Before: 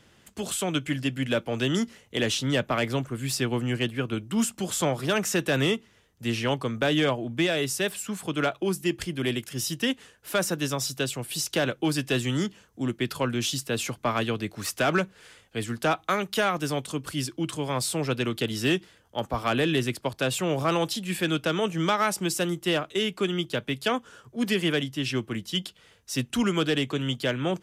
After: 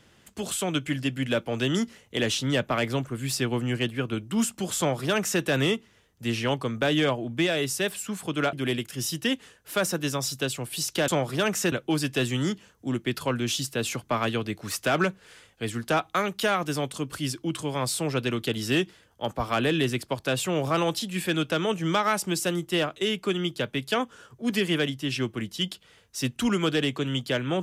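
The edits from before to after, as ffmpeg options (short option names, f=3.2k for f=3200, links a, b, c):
-filter_complex "[0:a]asplit=4[a][b][c][d];[a]atrim=end=8.532[e];[b]atrim=start=9.108:end=11.662[f];[c]atrim=start=4.778:end=5.422[g];[d]atrim=start=11.658[h];[e][f]acrossfade=d=0.004:c1=hsin:c2=hsin[i];[i][g]acrossfade=d=0.004:c1=hsin:c2=hsin[j];[j][h]acrossfade=d=0.004:c1=hsin:c2=hsin"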